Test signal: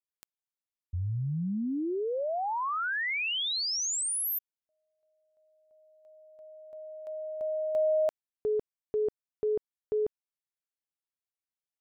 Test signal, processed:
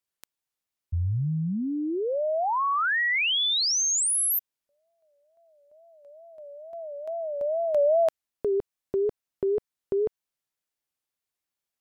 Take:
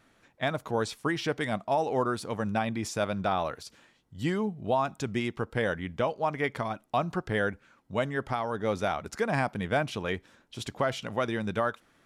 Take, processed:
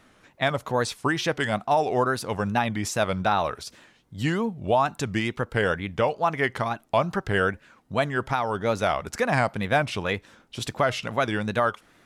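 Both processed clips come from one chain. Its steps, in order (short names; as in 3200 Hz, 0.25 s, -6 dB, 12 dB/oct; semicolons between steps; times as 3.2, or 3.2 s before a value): dynamic EQ 280 Hz, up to -4 dB, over -41 dBFS, Q 0.72; wow and flutter 2.3 Hz 140 cents; gain +6.5 dB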